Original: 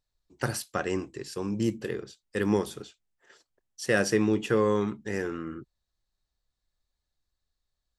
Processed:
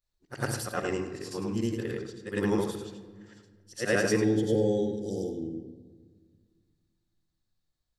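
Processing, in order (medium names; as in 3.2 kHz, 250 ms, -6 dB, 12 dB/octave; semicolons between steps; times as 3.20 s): short-time spectra conjugated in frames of 221 ms; spectral selection erased 4.24–5.89 s, 870–3000 Hz; on a send: reverberation RT60 1.7 s, pre-delay 12 ms, DRR 11 dB; on the sum: trim +2 dB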